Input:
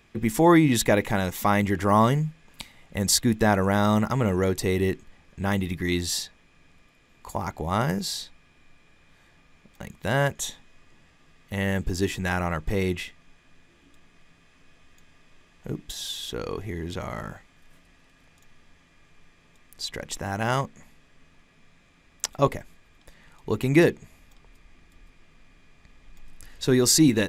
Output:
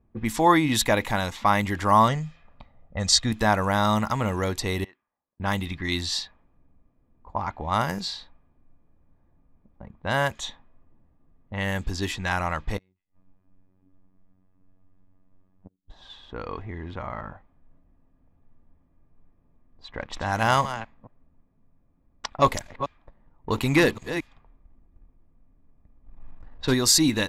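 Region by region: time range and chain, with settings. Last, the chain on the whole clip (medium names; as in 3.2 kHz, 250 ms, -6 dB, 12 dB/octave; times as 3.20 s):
2.08–3.32 s: low-pass 7.6 kHz 24 dB/octave + band-stop 1.1 kHz, Q 21 + comb 1.6 ms, depth 41%
4.84–5.40 s: low-pass 1.4 kHz + differentiator
12.77–15.90 s: peaking EQ 200 Hz +5 dB 0.35 oct + inverted gate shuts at -24 dBFS, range -40 dB + robot voice 93.5 Hz
19.95–26.74 s: chunks repeated in reverse 224 ms, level -12 dB + waveshaping leveller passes 1
whole clip: level-controlled noise filter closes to 380 Hz, open at -21 dBFS; fifteen-band graphic EQ 160 Hz -6 dB, 400 Hz -7 dB, 1 kHz +5 dB, 4 kHz +5 dB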